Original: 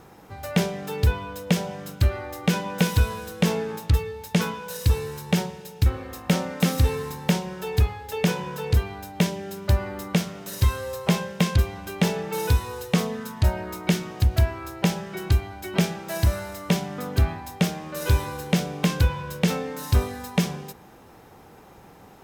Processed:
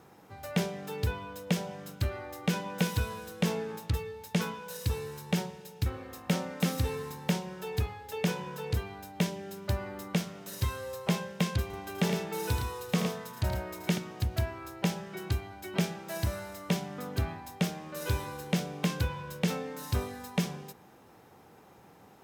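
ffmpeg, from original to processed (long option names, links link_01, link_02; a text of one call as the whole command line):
ffmpeg -i in.wav -filter_complex "[0:a]asettb=1/sr,asplit=3[link_01][link_02][link_03];[link_01]atrim=end=11.624[link_04];[link_02]atrim=start=11.62:end=13.98,asetpts=PTS-STARTPTS,afade=type=in:duration=0.004:curve=qsin,afade=type=out:start_time=2.356:duration=0.004:curve=qsin,aecho=1:1:79|112:0.398|0.501,atrim=end_sample=104076[link_05];[link_03]atrim=start=13.976[link_06];[link_04][link_05]acrossfade=duration=0.004:curve1=hsin:curve2=qsin[link_07];[link_07][link_06]acrossfade=duration=0.004:curve1=qsin:curve2=hsin,highpass=87,volume=-7dB" out.wav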